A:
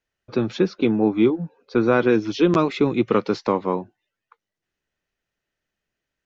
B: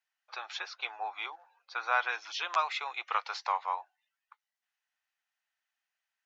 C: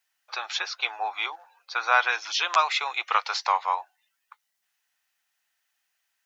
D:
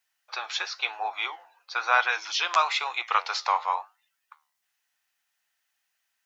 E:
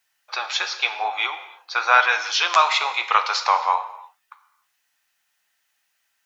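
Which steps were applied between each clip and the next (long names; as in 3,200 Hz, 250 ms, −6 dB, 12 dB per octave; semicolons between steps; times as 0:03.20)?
elliptic high-pass filter 760 Hz, stop band 70 dB; level −3 dB
high-shelf EQ 4,400 Hz +8.5 dB; level +7 dB
flanger 1 Hz, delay 8.1 ms, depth 6.3 ms, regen −79%; level +3.5 dB
reverb whose tail is shaped and stops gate 340 ms falling, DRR 9 dB; level +6 dB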